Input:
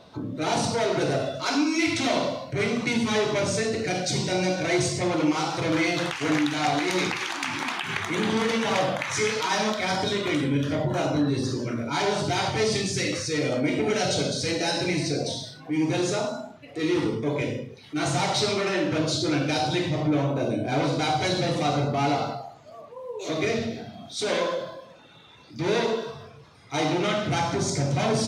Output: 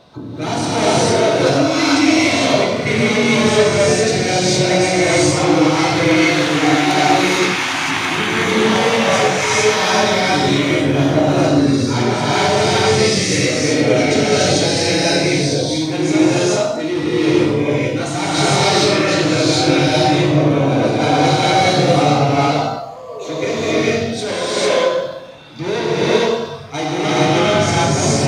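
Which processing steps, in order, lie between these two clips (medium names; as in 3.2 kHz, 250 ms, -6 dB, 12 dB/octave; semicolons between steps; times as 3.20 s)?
gated-style reverb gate 480 ms rising, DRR -8 dB; trim +2.5 dB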